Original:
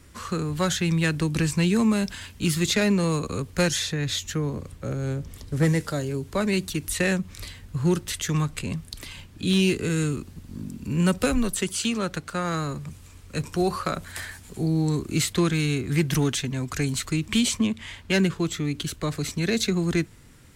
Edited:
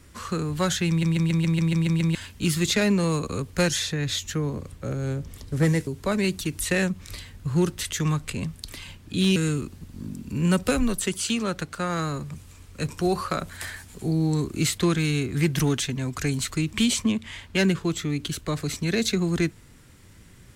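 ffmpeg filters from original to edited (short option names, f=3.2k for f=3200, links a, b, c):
-filter_complex "[0:a]asplit=12[a][b][c][d][e][f][g][h][i][j][k][l];[a]atrim=end=1.032[m];[b]atrim=start=0.888:end=1.032[n];[c]atrim=start=0.888:end=1.032[o];[d]atrim=start=0.888:end=1.032[p];[e]atrim=start=0.888:end=1.032[q];[f]atrim=start=0.888:end=1.032[r];[g]atrim=start=0.888:end=1.032[s];[h]atrim=start=0.888:end=1.032[t];[i]atrim=start=0.888:end=1.032[u];[j]atrim=start=2.148:end=5.872[v];[k]atrim=start=6.158:end=9.652[w];[l]atrim=start=9.908[x];[m][n]acrossfade=d=0.004:c1=hsin:c2=hsin[y];[y][o]acrossfade=d=0.004:c1=hsin:c2=hsin[z];[z][p]acrossfade=d=0.004:c1=hsin:c2=hsin[aa];[aa][q]acrossfade=d=0.004:c1=hsin:c2=hsin[ab];[ab][r]acrossfade=d=0.004:c1=hsin:c2=hsin[ac];[ac][s]acrossfade=d=0.004:c1=hsin:c2=hsin[ad];[ad][t]acrossfade=d=0.004:c1=hsin:c2=hsin[ae];[ae][u]acrossfade=d=0.004:c1=hsin:c2=hsin[af];[af][v]acrossfade=d=0.004:c1=hsin:c2=hsin[ag];[ag][w]acrossfade=d=0.004:c1=hsin:c2=hsin[ah];[ah][x]acrossfade=d=0.004:c1=hsin:c2=hsin"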